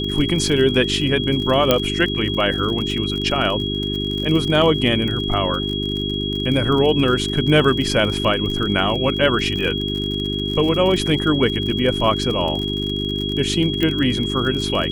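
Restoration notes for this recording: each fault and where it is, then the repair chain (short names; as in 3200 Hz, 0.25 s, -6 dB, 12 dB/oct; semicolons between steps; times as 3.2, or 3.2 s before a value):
crackle 47/s -25 dBFS
hum 50 Hz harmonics 8 -25 dBFS
tone 3300 Hz -25 dBFS
1.71 pop 0 dBFS
13.83 pop -8 dBFS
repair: de-click; de-hum 50 Hz, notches 8; notch 3300 Hz, Q 30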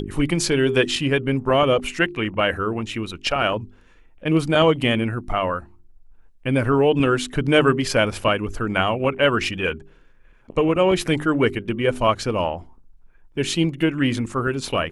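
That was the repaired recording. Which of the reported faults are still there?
13.83 pop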